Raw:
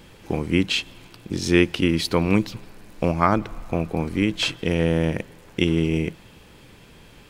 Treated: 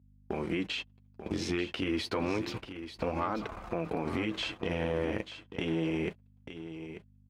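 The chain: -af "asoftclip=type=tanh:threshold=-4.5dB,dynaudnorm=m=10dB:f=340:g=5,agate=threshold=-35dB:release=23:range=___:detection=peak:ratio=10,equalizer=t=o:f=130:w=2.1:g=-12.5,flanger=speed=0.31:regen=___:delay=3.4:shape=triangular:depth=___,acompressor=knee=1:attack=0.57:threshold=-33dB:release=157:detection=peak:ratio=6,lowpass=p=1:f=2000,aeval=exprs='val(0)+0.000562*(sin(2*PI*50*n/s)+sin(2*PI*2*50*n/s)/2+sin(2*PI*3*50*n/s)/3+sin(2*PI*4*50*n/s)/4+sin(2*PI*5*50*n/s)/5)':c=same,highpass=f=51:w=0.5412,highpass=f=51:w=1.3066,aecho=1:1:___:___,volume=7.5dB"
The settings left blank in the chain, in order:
-55dB, -23, 7.5, 889, 0.282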